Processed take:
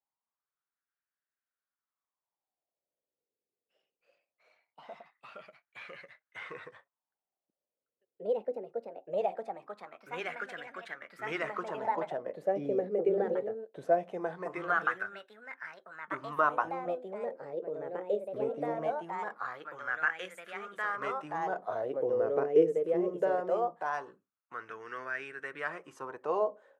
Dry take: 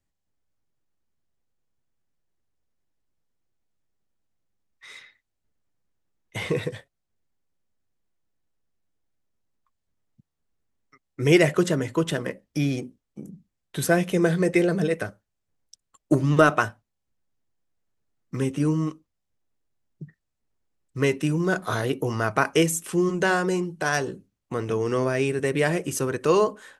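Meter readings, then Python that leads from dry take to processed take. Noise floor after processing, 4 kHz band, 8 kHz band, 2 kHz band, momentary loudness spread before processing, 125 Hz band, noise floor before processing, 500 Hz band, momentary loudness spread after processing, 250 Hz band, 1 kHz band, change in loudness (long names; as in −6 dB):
below −85 dBFS, −17.0 dB, below −25 dB, −7.5 dB, 13 LU, −24.0 dB, −80 dBFS, −5.5 dB, 18 LU, −15.5 dB, −3.5 dB, −10.0 dB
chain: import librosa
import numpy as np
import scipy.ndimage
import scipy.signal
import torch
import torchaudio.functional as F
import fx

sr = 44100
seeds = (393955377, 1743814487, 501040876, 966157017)

y = fx.echo_pitch(x, sr, ms=96, semitones=2, count=3, db_per_echo=-3.0)
y = fx.wah_lfo(y, sr, hz=0.21, low_hz=450.0, high_hz=1600.0, q=4.1)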